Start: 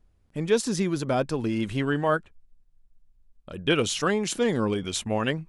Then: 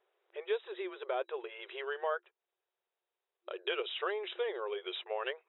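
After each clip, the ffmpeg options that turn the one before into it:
-af "acompressor=threshold=-38dB:ratio=2.5,afftfilt=real='re*between(b*sr/4096,350,3900)':imag='im*between(b*sr/4096,350,3900)':win_size=4096:overlap=0.75,volume=2dB"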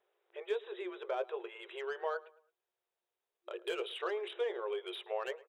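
-filter_complex "[0:a]acrossover=split=1100[a][b];[a]asplit=2[c][d];[d]adelay=17,volume=-5dB[e];[c][e]amix=inputs=2:normalize=0[f];[b]asoftclip=type=tanh:threshold=-36dB[g];[f][g]amix=inputs=2:normalize=0,asplit=2[h][i];[i]adelay=109,lowpass=f=3.2k:p=1,volume=-20.5dB,asplit=2[j][k];[k]adelay=109,lowpass=f=3.2k:p=1,volume=0.36,asplit=2[l][m];[m]adelay=109,lowpass=f=3.2k:p=1,volume=0.36[n];[h][j][l][n]amix=inputs=4:normalize=0,volume=-2dB"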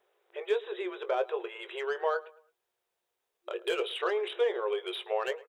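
-filter_complex "[0:a]asplit=2[a][b];[b]adelay=21,volume=-14dB[c];[a][c]amix=inputs=2:normalize=0,volume=6.5dB"

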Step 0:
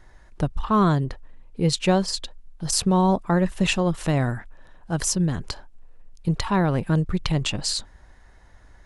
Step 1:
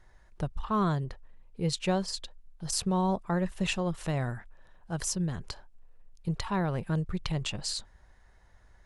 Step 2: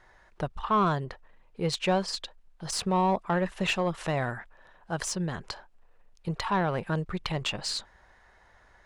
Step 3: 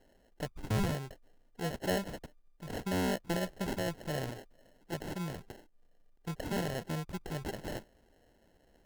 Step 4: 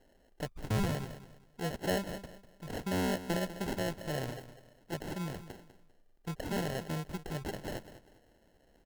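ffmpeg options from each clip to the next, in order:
-af "equalizer=f=280:w=4.5:g=-7,volume=-8dB"
-filter_complex "[0:a]asplit=2[a][b];[b]highpass=f=720:p=1,volume=15dB,asoftclip=type=tanh:threshold=-13dB[c];[a][c]amix=inputs=2:normalize=0,lowpass=f=2.4k:p=1,volume=-6dB"
-af "acrusher=samples=37:mix=1:aa=0.000001,volume=-7dB"
-af "aecho=1:1:198|396|594:0.211|0.0613|0.0178"

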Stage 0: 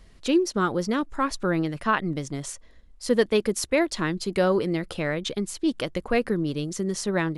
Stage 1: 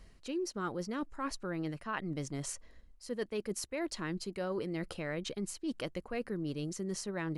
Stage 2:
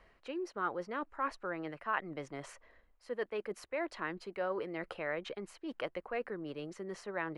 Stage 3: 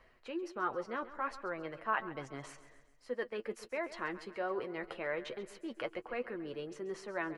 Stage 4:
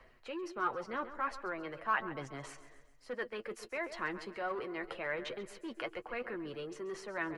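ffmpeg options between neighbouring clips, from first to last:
-af "areverse,acompressor=threshold=-30dB:ratio=6,areverse,bandreject=f=3.5k:w=9.4,volume=-4dB"
-filter_complex "[0:a]acrossover=split=440 2700:gain=0.158 1 0.0891[a][b][c];[a][b][c]amix=inputs=3:normalize=0,volume=4.5dB"
-af "flanger=delay=7.7:depth=1.4:regen=37:speed=1.3:shape=triangular,aecho=1:1:135|270|405|540|675:0.168|0.089|0.0472|0.025|0.0132,volume=3.5dB"
-filter_complex "[0:a]aphaser=in_gain=1:out_gain=1:delay=2.9:decay=0.24:speed=0.95:type=sinusoidal,acrossover=split=150|850[a][b][c];[b]asoftclip=type=tanh:threshold=-39.5dB[d];[a][d][c]amix=inputs=3:normalize=0,volume=1.5dB"

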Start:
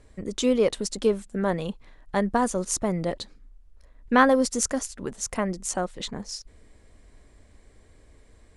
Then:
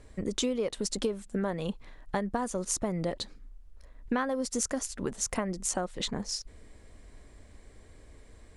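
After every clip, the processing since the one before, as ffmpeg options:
-af "acompressor=threshold=-28dB:ratio=12,volume=1.5dB"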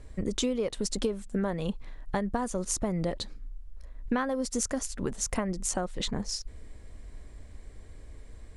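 -af "lowshelf=f=110:g=8.5"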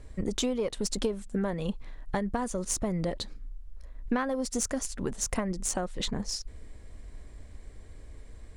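-af "aeval=exprs='0.251*(cos(1*acos(clip(val(0)/0.251,-1,1)))-cos(1*PI/2))+0.01*(cos(6*acos(clip(val(0)/0.251,-1,1)))-cos(6*PI/2))':c=same"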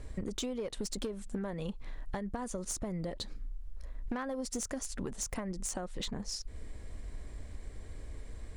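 -af "aeval=exprs='clip(val(0),-1,0.0631)':c=same,acompressor=threshold=-37dB:ratio=6,volume=2.5dB"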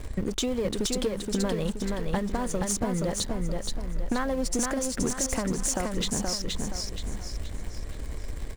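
-filter_complex "[0:a]asplit=2[a][b];[b]aeval=exprs='val(0)*gte(abs(val(0)),0.0106)':c=same,volume=-8dB[c];[a][c]amix=inputs=2:normalize=0,aecho=1:1:474|948|1422|1896|2370:0.668|0.274|0.112|0.0461|0.0189,volume=5.5dB"

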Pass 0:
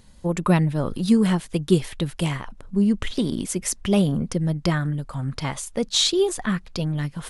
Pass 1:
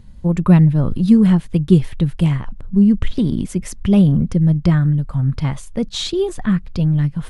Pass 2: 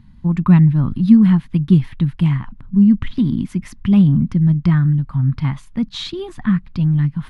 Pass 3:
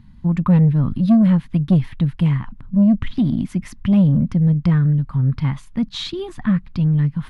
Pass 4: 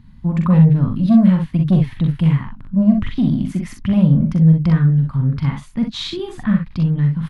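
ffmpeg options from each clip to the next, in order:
-af "bass=f=250:g=13,treble=f=4k:g=-7,volume=-1dB"
-af "equalizer=f=125:t=o:w=1:g=7,equalizer=f=250:t=o:w=1:g=10,equalizer=f=500:t=o:w=1:g=-12,equalizer=f=1k:t=o:w=1:g=9,equalizer=f=2k:t=o:w=1:g=6,equalizer=f=4k:t=o:w=1:g=4,equalizer=f=8k:t=o:w=1:g=-7,volume=-7.5dB"
-af "asoftclip=type=tanh:threshold=-8dB"
-af "aecho=1:1:43|62:0.531|0.473"

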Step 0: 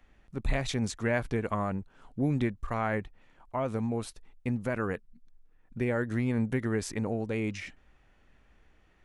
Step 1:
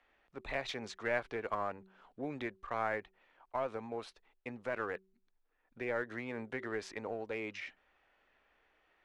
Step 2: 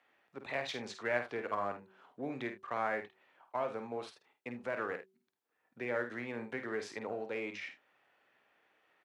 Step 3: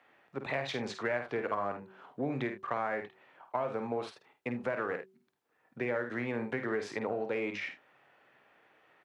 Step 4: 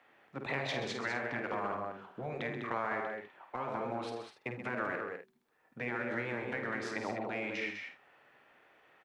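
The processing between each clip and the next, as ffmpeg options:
-filter_complex "[0:a]acrossover=split=380 4900:gain=0.1 1 0.0891[a][b][c];[a][b][c]amix=inputs=3:normalize=0,bandreject=f=190.3:t=h:w=4,bandreject=f=380.6:t=h:w=4,asplit=2[d][e];[e]aeval=exprs='clip(val(0),-1,0.0168)':c=same,volume=-5.5dB[f];[d][f]amix=inputs=2:normalize=0,volume=-6dB"
-filter_complex "[0:a]highpass=f=110:w=0.5412,highpass=f=110:w=1.3066,asplit=2[a][b];[b]aecho=0:1:50|79:0.398|0.15[c];[a][c]amix=inputs=2:normalize=0"
-af "equalizer=f=140:w=4.5:g=6.5,acompressor=threshold=-38dB:ratio=4,highshelf=f=3.2k:g=-8,volume=8.5dB"
-af "aecho=1:1:131.2|201.2:0.316|0.447,afftfilt=real='re*lt(hypot(re,im),0.126)':imag='im*lt(hypot(re,im),0.126)':win_size=1024:overlap=0.75,asubboost=boost=3:cutoff=55"

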